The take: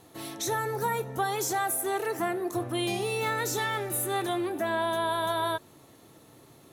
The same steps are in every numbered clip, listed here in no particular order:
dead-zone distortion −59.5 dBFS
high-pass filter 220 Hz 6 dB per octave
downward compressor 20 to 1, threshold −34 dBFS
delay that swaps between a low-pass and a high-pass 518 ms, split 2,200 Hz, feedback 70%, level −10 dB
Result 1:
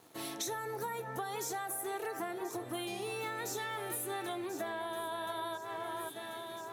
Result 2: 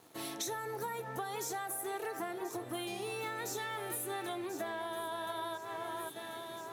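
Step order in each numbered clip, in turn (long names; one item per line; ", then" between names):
dead-zone distortion, then delay that swaps between a low-pass and a high-pass, then downward compressor, then high-pass filter
delay that swaps between a low-pass and a high-pass, then downward compressor, then dead-zone distortion, then high-pass filter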